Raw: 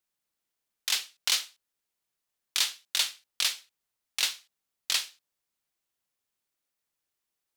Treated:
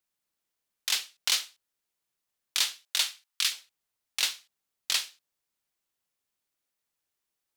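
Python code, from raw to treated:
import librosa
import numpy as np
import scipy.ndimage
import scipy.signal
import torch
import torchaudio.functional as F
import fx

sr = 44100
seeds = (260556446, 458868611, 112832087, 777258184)

y = fx.highpass(x, sr, hz=fx.line((2.82, 350.0), (3.5, 1200.0)), slope=24, at=(2.82, 3.5), fade=0.02)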